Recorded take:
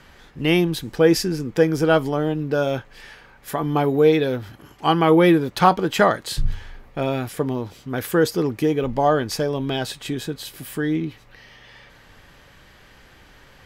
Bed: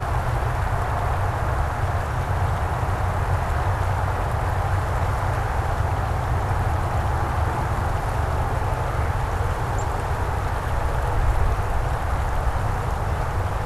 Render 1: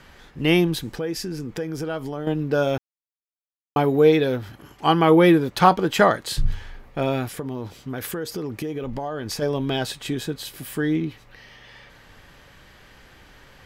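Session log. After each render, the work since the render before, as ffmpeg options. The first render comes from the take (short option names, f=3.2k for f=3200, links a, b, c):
-filter_complex "[0:a]asettb=1/sr,asplit=3[a][b][c];[a]atrim=end=0.924[d];[b]atrim=start=0.92:end=2.27,asetpts=PTS-STARTPTS,afade=t=in:d=0.004:c=qsin,afade=t=out:st=1.346:d=0.004:c=qsin,acompressor=threshold=-28dB:ratio=3:attack=3.2:release=140:knee=1:detection=peak[e];[c]atrim=start=2.266[f];[d][e]acrossfade=d=0.004:c1=hsin:c2=qsin[g];[g][f]acrossfade=d=0.004:c1=qsin:c2=hsin,asplit=3[h][i][j];[h]afade=t=out:st=7.36:d=0.02[k];[i]acompressor=threshold=-25dB:ratio=10:attack=3.2:release=140:knee=1:detection=peak,afade=t=in:st=7.36:d=0.02,afade=t=out:st=9.41:d=0.02[l];[j]afade=t=in:st=9.41:d=0.02[m];[k][l][m]amix=inputs=3:normalize=0,asplit=3[n][o][p];[n]atrim=end=2.78,asetpts=PTS-STARTPTS,afade=t=out:st=2.776:d=0.004:c=hsin[q];[o]atrim=start=2.78:end=3.76,asetpts=PTS-STARTPTS,volume=0[r];[p]atrim=start=3.76,asetpts=PTS-STARTPTS,afade=t=in:d=0.004:c=hsin[s];[q][r][s]concat=n=3:v=0:a=1"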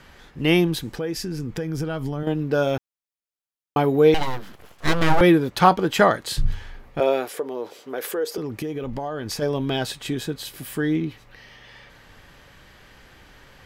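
-filter_complex "[0:a]asettb=1/sr,asplit=3[a][b][c];[a]atrim=end=0.974[d];[b]atrim=start=0.97:end=2.23,asetpts=PTS-STARTPTS,afade=t=in:d=0.004:c=qsin,afade=t=out:st=1.256:d=0.004:c=qsin,asubboost=boost=6.5:cutoff=240[e];[c]atrim=start=2.226[f];[d][e]acrossfade=d=0.004:c1=hsin:c2=qsin[g];[g][f]acrossfade=d=0.004:c1=qsin:c2=hsin,asettb=1/sr,asplit=3[h][i][j];[h]atrim=end=4.144[k];[i]atrim=start=4.14:end=5.21,asetpts=PTS-STARTPTS,afade=t=in:d=0.004:c=qsin,afade=t=out:st=1.066:d=0.004:c=qsin,aeval=exprs='abs(val(0))':c=same[l];[j]atrim=start=5.206[m];[k][l]acrossfade=d=0.004:c1=hsin:c2=qsin[n];[n][m]acrossfade=d=0.004:c1=qsin:c2=hsin,asettb=1/sr,asplit=3[o][p][q];[o]atrim=end=7.004[r];[p]atrim=start=7:end=8.38,asetpts=PTS-STARTPTS,afade=t=in:d=0.004:c=qsin,afade=t=out:st=1.376:d=0.004:c=qsin,highpass=f=450:t=q:w=2.3[s];[q]atrim=start=8.376[t];[r][s]acrossfade=d=0.004:c1=hsin:c2=qsin[u];[u][t]acrossfade=d=0.004:c1=qsin:c2=hsin"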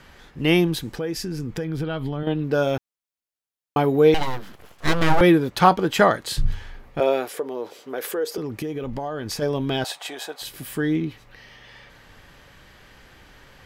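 -filter_complex "[0:a]asettb=1/sr,asplit=3[a][b][c];[a]atrim=end=1.644[d];[b]atrim=start=1.64:end=2.44,asetpts=PTS-STARTPTS,afade=t=in:d=0.004:c=qsin,afade=t=out:st=0.796:d=0.004:c=qsin,highshelf=f=4.7k:t=q:w=3:g=-6.5[e];[c]atrim=start=2.436[f];[d][e]acrossfade=d=0.004:c1=hsin:c2=qsin[g];[g][f]acrossfade=d=0.004:c1=qsin:c2=hsin,asettb=1/sr,asplit=3[h][i][j];[h]atrim=end=9.844[k];[i]atrim=start=9.84:end=10.42,asetpts=PTS-STARTPTS,afade=t=in:d=0.004:c=qsin,afade=t=out:st=0.576:d=0.004:c=qsin,highpass=f=720:t=q:w=4.1[l];[j]atrim=start=10.416[m];[k][l]acrossfade=d=0.004:c1=hsin:c2=qsin[n];[n][m]acrossfade=d=0.004:c1=qsin:c2=hsin"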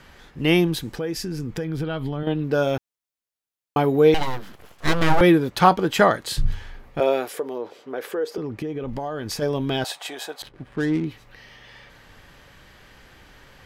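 -filter_complex "[0:a]asettb=1/sr,asplit=3[a][b][c];[a]atrim=end=7.584[d];[b]atrim=start=7.58:end=8.88,asetpts=PTS-STARTPTS,afade=t=in:d=0.004:c=qsin,afade=t=out:st=1.296:d=0.004:c=qsin,lowpass=f=2.6k:p=1[e];[c]atrim=start=8.876[f];[d][e]acrossfade=d=0.004:c1=hsin:c2=qsin[g];[g][f]acrossfade=d=0.004:c1=qsin:c2=hsin,asettb=1/sr,asplit=3[h][i][j];[h]atrim=end=10.424[k];[i]atrim=start=10.42:end=11.05,asetpts=PTS-STARTPTS,afade=t=in:d=0.004:c=qsin,afade=t=out:st=0.626:d=0.004:c=qsin,adynamicsmooth=sensitivity=5:basefreq=700[l];[j]atrim=start=11.046[m];[k][l]acrossfade=d=0.004:c1=hsin:c2=qsin[n];[n][m]acrossfade=d=0.004:c1=qsin:c2=hsin"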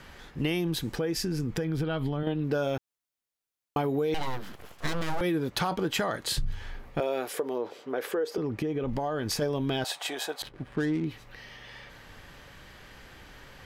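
-filter_complex "[0:a]acrossover=split=4300[a][b];[a]alimiter=limit=-13.5dB:level=0:latency=1:release=21[c];[c][b]amix=inputs=2:normalize=0,acompressor=threshold=-25dB:ratio=6"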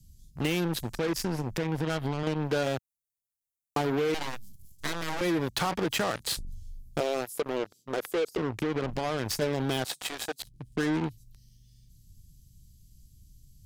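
-filter_complex "[0:a]acrossover=split=170|6200[a][b][c];[a]asoftclip=type=tanh:threshold=-34.5dB[d];[b]acrusher=bits=4:mix=0:aa=0.5[e];[d][e][c]amix=inputs=3:normalize=0"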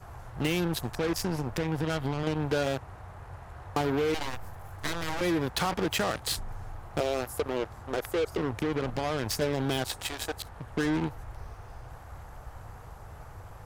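-filter_complex "[1:a]volume=-22dB[a];[0:a][a]amix=inputs=2:normalize=0"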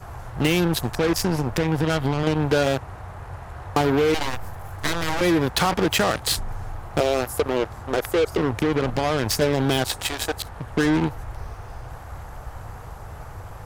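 -af "volume=8dB"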